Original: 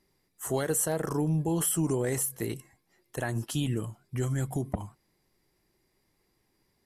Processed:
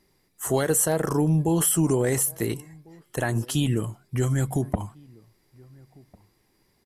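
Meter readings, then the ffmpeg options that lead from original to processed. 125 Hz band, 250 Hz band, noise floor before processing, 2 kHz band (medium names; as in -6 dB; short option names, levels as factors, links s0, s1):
+6.0 dB, +6.0 dB, -74 dBFS, +6.0 dB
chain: -filter_complex "[0:a]asplit=2[s0][s1];[s1]adelay=1399,volume=0.0501,highshelf=f=4000:g=-31.5[s2];[s0][s2]amix=inputs=2:normalize=0,volume=2"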